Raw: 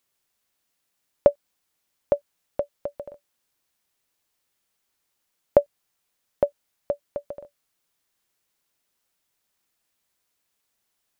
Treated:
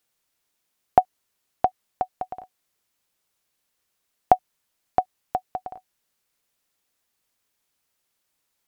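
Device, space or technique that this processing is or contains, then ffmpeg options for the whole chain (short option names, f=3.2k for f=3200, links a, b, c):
nightcore: -af "asetrate=56889,aresample=44100,volume=1.5dB"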